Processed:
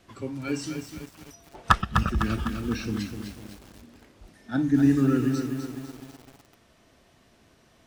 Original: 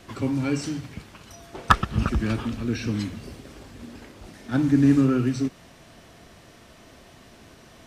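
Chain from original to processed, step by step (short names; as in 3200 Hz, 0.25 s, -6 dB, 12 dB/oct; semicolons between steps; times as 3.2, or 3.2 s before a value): spectral noise reduction 8 dB; lo-fi delay 0.252 s, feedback 55%, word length 7-bit, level -6 dB; gain -2 dB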